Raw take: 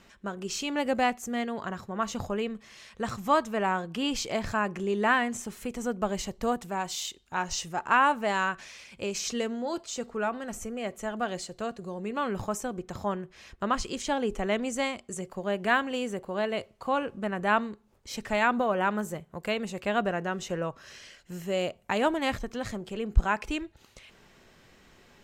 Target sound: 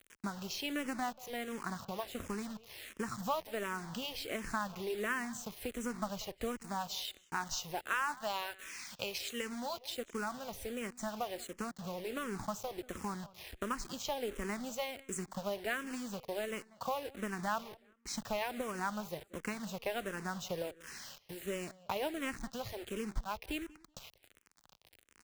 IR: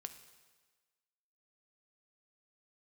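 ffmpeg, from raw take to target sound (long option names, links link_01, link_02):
-filter_complex "[0:a]asettb=1/sr,asplit=3[link_01][link_02][link_03];[link_01]atrim=end=7.874[link_04];[link_02]atrim=start=7.87:end=9.95,asetpts=PTS-STARTPTS,afade=type=in:duration=0.004:curve=qsin,afade=type=out:start_time=2.076:duration=0.004:curve=qsin,tiltshelf=frequency=650:gain=-5[link_05];[link_03]atrim=start=9.946[link_06];[link_04][link_05]acrossfade=duration=0.004:curve1=hsin:curve2=qsin[link_07];[link_07][link_06]acrossfade=duration=0.004:curve1=qsin:curve2=hsin,acompressor=threshold=-40dB:ratio=3,acrusher=bits=7:mix=0:aa=0.000001,aeval=exprs='0.0794*(cos(1*acos(clip(val(0)/0.0794,-1,1)))-cos(1*PI/2))+0.00447*(cos(7*acos(clip(val(0)/0.0794,-1,1)))-cos(7*PI/2))':channel_layout=same,asplit=2[link_08][link_09];[link_09]adelay=188,lowpass=frequency=4700:poles=1,volume=-20.5dB,asplit=2[link_10][link_11];[link_11]adelay=188,lowpass=frequency=4700:poles=1,volume=0.24[link_12];[link_08][link_10][link_12]amix=inputs=3:normalize=0,asplit=2[link_13][link_14];[link_14]afreqshift=-1.4[link_15];[link_13][link_15]amix=inputs=2:normalize=1,volume=6dB"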